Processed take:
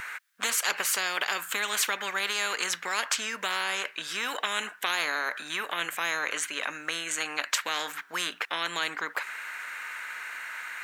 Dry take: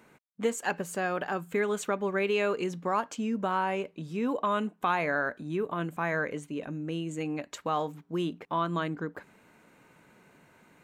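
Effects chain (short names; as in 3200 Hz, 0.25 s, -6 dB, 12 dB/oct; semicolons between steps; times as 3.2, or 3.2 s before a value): resonant high-pass 1600 Hz, resonance Q 4.5; spectral compressor 4:1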